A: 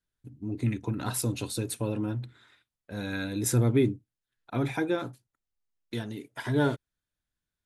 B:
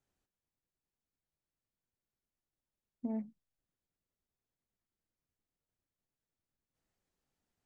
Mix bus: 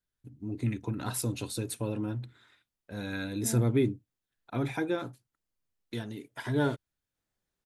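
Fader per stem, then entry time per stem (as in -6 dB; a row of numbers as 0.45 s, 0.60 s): -2.5 dB, -1.0 dB; 0.00 s, 0.40 s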